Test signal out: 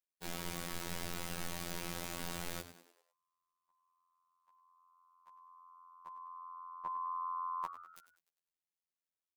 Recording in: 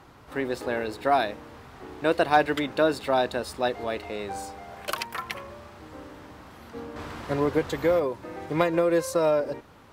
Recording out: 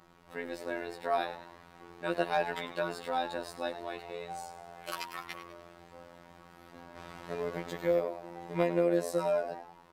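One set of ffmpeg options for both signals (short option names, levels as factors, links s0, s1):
-filter_complex "[0:a]aecho=1:1:5.4:0.62,asplit=6[s0][s1][s2][s3][s4][s5];[s1]adelay=100,afreqshift=92,volume=0.224[s6];[s2]adelay=200,afreqshift=184,volume=0.105[s7];[s3]adelay=300,afreqshift=276,volume=0.0495[s8];[s4]adelay=400,afreqshift=368,volume=0.0232[s9];[s5]adelay=500,afreqshift=460,volume=0.011[s10];[s0][s6][s7][s8][s9][s10]amix=inputs=6:normalize=0,afftfilt=real='hypot(re,im)*cos(PI*b)':imag='0':win_size=2048:overlap=0.75,volume=0.473"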